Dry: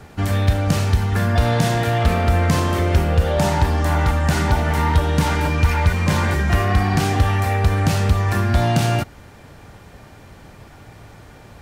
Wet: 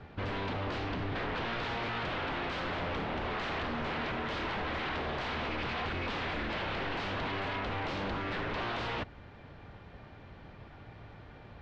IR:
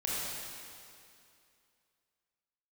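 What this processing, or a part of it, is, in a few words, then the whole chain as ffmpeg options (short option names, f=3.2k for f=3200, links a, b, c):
synthesiser wavefolder: -filter_complex "[0:a]asettb=1/sr,asplit=3[a][b][c];[a]atrim=end=0.784[d];[b]atrim=start=0.78:end=1.71,asetpts=PTS-STARTPTS,afade=t=in:d=0.004:c=qsin,afade=t=out:st=0.926:d=0.004:c=qsin,lowpass=6.3k[e];[c]atrim=start=1.706[f];[d][e]acrossfade=d=0.004:c1=hsin:c2=qsin[g];[g][f]acrossfade=d=0.004:c1=qsin:c2=hsin,aeval=exprs='0.0794*(abs(mod(val(0)/0.0794+3,4)-2)-1)':c=same,lowpass=f=3.9k:w=0.5412,lowpass=f=3.9k:w=1.3066,volume=-8dB"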